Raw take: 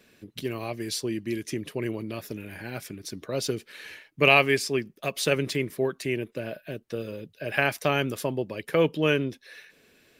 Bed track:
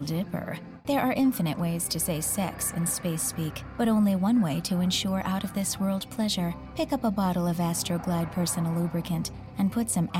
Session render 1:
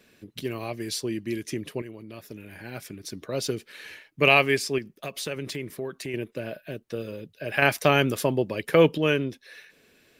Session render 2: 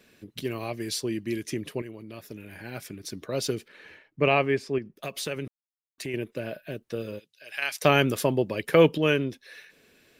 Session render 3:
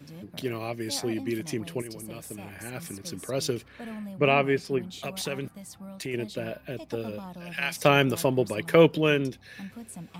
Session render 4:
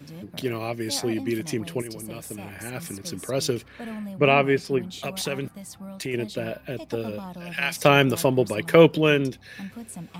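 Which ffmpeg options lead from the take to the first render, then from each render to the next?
ffmpeg -i in.wav -filter_complex "[0:a]asettb=1/sr,asplit=3[link_01][link_02][link_03];[link_01]atrim=end=4.784[link_04];[link_02]atrim=start=4.78:end=6.14,asetpts=PTS-STARTPTS,afade=type=in:duration=0.004:curve=qsin,afade=type=out:start_time=1.356:duration=0.004:curve=qsin,acompressor=threshold=-31dB:ratio=2.5:attack=3.2:release=140:knee=1:detection=peak[link_05];[link_03]atrim=start=6.136[link_06];[link_04][link_05]acrossfade=duration=0.004:curve1=hsin:curve2=qsin[link_07];[link_07][link_06]acrossfade=duration=0.004:curve1=qsin:curve2=hsin,asplit=4[link_08][link_09][link_10][link_11];[link_08]atrim=end=1.82,asetpts=PTS-STARTPTS,afade=type=out:start_time=1.816:duration=0.004:curve=hsin:silence=0.251189[link_12];[link_09]atrim=start=1.82:end=7.622,asetpts=PTS-STARTPTS,afade=type=in:duration=1.28:silence=0.251189[link_13];[link_10]atrim=start=7.618:end=8.982,asetpts=PTS-STARTPTS,volume=4.5dB[link_14];[link_11]atrim=start=8.978[link_15];[link_12][link_13]concat=n=2:v=0:a=1[link_16];[link_16][link_14]acrossfade=duration=0.004:curve1=hsin:curve2=hsin[link_17];[link_17][link_15]acrossfade=duration=0.004:curve1=hsin:curve2=hsin" out.wav
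ffmpeg -i in.wav -filter_complex "[0:a]asettb=1/sr,asplit=3[link_01][link_02][link_03];[link_01]atrim=end=3.684[link_04];[link_02]atrim=start=3.68:end=4.97,asetpts=PTS-STARTPTS,afade=type=in:duration=0.004:curve=qsin,afade=type=out:start_time=1.286:duration=0.004:curve=qsin,lowpass=frequency=1100:poles=1[link_05];[link_03]atrim=start=4.966[link_06];[link_04][link_05]acrossfade=duration=0.004:curve1=hsin:curve2=qsin[link_07];[link_07][link_06]acrossfade=duration=0.004:curve1=qsin:curve2=hsin,asplit=3[link_08][link_09][link_10];[link_08]afade=type=out:start_time=7.18:duration=0.02[link_11];[link_09]bandpass=frequency=6100:width_type=q:width=0.7,afade=type=in:start_time=7.18:duration=0.02,afade=type=out:start_time=7.8:duration=0.02[link_12];[link_10]afade=type=in:start_time=7.8:duration=0.02[link_13];[link_11][link_12][link_13]amix=inputs=3:normalize=0,asplit=3[link_14][link_15][link_16];[link_14]atrim=end=5.48,asetpts=PTS-STARTPTS,afade=type=out:start_time=5.476:duration=0.004:curve=hsin[link_17];[link_15]atrim=start=5.48:end=5.98,asetpts=PTS-STARTPTS,volume=0[link_18];[link_16]atrim=start=5.98,asetpts=PTS-STARTPTS,afade=type=in:duration=0.004:curve=hsin[link_19];[link_17][link_18][link_19]concat=n=3:v=0:a=1" out.wav
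ffmpeg -i in.wav -i bed.wav -filter_complex "[1:a]volume=-15.5dB[link_01];[0:a][link_01]amix=inputs=2:normalize=0" out.wav
ffmpeg -i in.wav -af "volume=3.5dB,alimiter=limit=-2dB:level=0:latency=1" out.wav

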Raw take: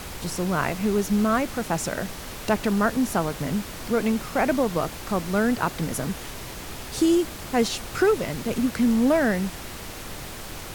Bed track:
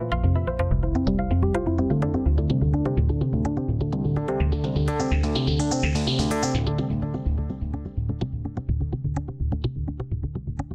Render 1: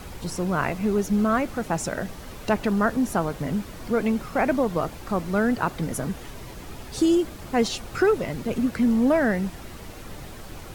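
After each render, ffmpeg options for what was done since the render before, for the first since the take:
ffmpeg -i in.wav -af "afftdn=noise_reduction=8:noise_floor=-37" out.wav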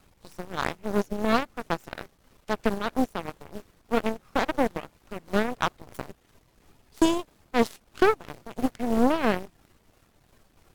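ffmpeg -i in.wav -af "tremolo=f=3:d=0.38,aeval=exprs='0.355*(cos(1*acos(clip(val(0)/0.355,-1,1)))-cos(1*PI/2))+0.0501*(cos(4*acos(clip(val(0)/0.355,-1,1)))-cos(4*PI/2))+0.0562*(cos(7*acos(clip(val(0)/0.355,-1,1)))-cos(7*PI/2))':channel_layout=same" out.wav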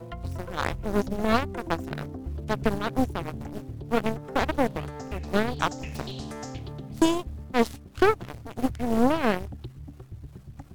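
ffmpeg -i in.wav -i bed.wav -filter_complex "[1:a]volume=-13.5dB[link_01];[0:a][link_01]amix=inputs=2:normalize=0" out.wav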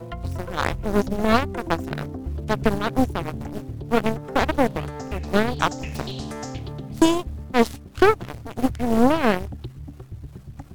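ffmpeg -i in.wav -af "volume=4.5dB" out.wav

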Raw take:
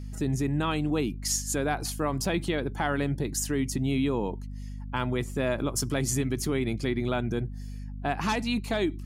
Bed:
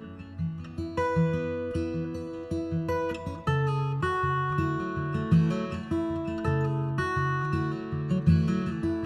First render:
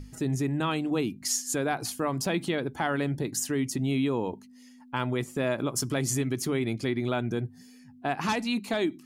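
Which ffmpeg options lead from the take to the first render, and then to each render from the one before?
ffmpeg -i in.wav -af "bandreject=frequency=50:width_type=h:width=6,bandreject=frequency=100:width_type=h:width=6,bandreject=frequency=150:width_type=h:width=6,bandreject=frequency=200:width_type=h:width=6" out.wav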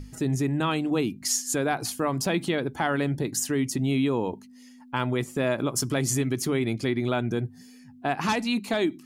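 ffmpeg -i in.wav -af "volume=2.5dB" out.wav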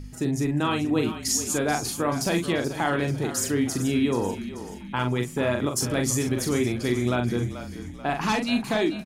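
ffmpeg -i in.wav -filter_complex "[0:a]asplit=2[link_01][link_02];[link_02]adelay=41,volume=-5.5dB[link_03];[link_01][link_03]amix=inputs=2:normalize=0,asplit=6[link_04][link_05][link_06][link_07][link_08][link_09];[link_05]adelay=434,afreqshift=-34,volume=-12dB[link_10];[link_06]adelay=868,afreqshift=-68,volume=-18.4dB[link_11];[link_07]adelay=1302,afreqshift=-102,volume=-24.8dB[link_12];[link_08]adelay=1736,afreqshift=-136,volume=-31.1dB[link_13];[link_09]adelay=2170,afreqshift=-170,volume=-37.5dB[link_14];[link_04][link_10][link_11][link_12][link_13][link_14]amix=inputs=6:normalize=0" out.wav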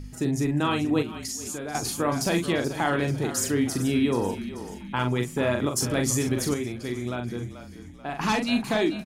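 ffmpeg -i in.wav -filter_complex "[0:a]asettb=1/sr,asplit=3[link_01][link_02][link_03];[link_01]atrim=end=1.024[link_04];[link_02]atrim=start=1.02:end=1.75,asetpts=PTS-STARTPTS,afade=type=in:duration=0.004:curve=qsin,afade=type=out:start_time=0.726:duration=0.004:curve=qsin,acompressor=threshold=-30dB:ratio=6:attack=3.2:release=140:knee=1:detection=peak[link_05];[link_03]atrim=start=1.746[link_06];[link_04][link_05]acrossfade=duration=0.004:curve1=hsin:curve2=qsin[link_07];[link_07][link_06]acrossfade=duration=0.004:curve1=qsin:curve2=hsin,asettb=1/sr,asplit=3[link_08][link_09][link_10];[link_08]atrim=end=3.694[link_11];[link_09]atrim=start=3.69:end=4.68,asetpts=PTS-STARTPTS,afade=type=in:duration=0.004:curve=qsin,afade=type=out:start_time=0.986:duration=0.004:curve=qsin,bandreject=frequency=6800:width=8.7[link_12];[link_10]atrim=start=4.676[link_13];[link_11][link_12]acrossfade=duration=0.004:curve1=hsin:curve2=qsin[link_14];[link_14][link_13]acrossfade=duration=0.004:curve1=qsin:curve2=hsin,asplit=3[link_15][link_16][link_17];[link_15]atrim=end=6.542[link_18];[link_16]atrim=start=6.538:end=8.192,asetpts=PTS-STARTPTS,volume=-6.5dB[link_19];[link_17]atrim=start=8.188[link_20];[link_18][link_19]acrossfade=duration=0.004:curve1=hsin:curve2=hsin[link_21];[link_21][link_20]acrossfade=duration=0.004:curve1=hsin:curve2=hsin" out.wav

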